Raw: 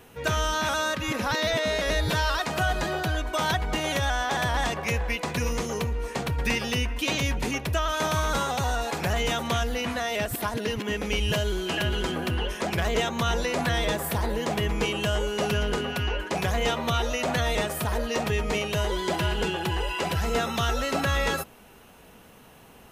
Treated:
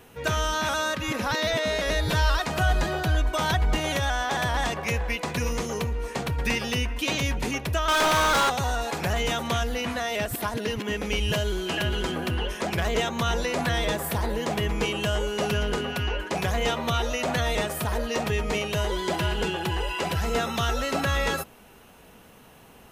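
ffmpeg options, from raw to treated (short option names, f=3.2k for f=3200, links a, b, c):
-filter_complex "[0:a]asettb=1/sr,asplit=3[a][b][c];[a]atrim=end=2.104[d];[b]atrim=start=2.1:end=3.96,asetpts=PTS-STARTPTS,afade=t=in:d=0.004:c=qsin,afade=t=out:st=1.856:d=0.004:c=qsin,lowshelf=f=76:g=11[e];[c]atrim=start=3.956[f];[d][e]acrossfade=d=0.004:c1=hsin:c2=qsin[g];[g][f]acrossfade=d=0.004:c1=qsin:c2=hsin,asettb=1/sr,asplit=3[h][i][j];[h]atrim=end=7.884[k];[i]atrim=start=7.88:end=8.5,asetpts=PTS-STARTPTS,afade=t=in:d=0.004:c=qsin,afade=t=out:st=0.616:d=0.004:c=qsin,asplit=2[l][m];[m]highpass=f=720:p=1,volume=27dB,asoftclip=type=tanh:threshold=-15.5dB[n];[l][n]amix=inputs=2:normalize=0,lowpass=f=5.5k:p=1,volume=-6dB[o];[j]atrim=start=8.496[p];[k][o]acrossfade=d=0.004:c1=hsin:c2=qsin[q];[q][p]acrossfade=d=0.004:c1=qsin:c2=hsin"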